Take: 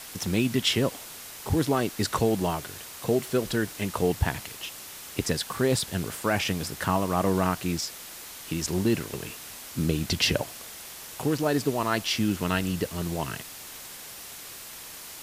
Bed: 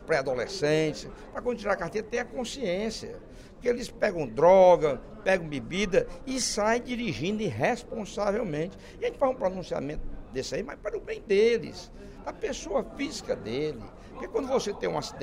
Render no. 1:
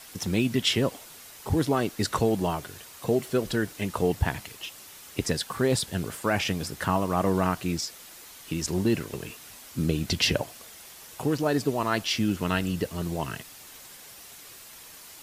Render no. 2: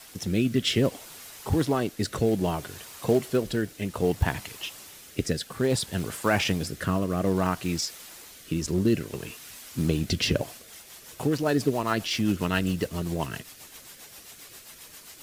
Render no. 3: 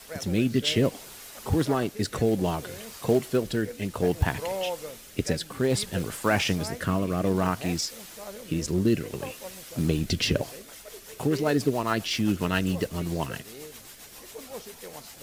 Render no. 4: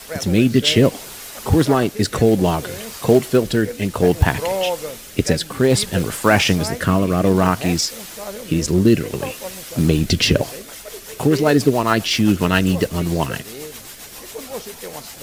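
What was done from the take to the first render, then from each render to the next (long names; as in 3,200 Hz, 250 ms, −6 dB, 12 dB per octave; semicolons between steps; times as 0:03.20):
broadband denoise 6 dB, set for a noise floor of −43 dBFS
in parallel at −9 dB: log-companded quantiser 4 bits; on the sum: rotating-speaker cabinet horn 0.6 Hz, later 7.5 Hz, at 0:10.15
mix in bed −14 dB
level +9.5 dB; brickwall limiter −1 dBFS, peak gain reduction 1 dB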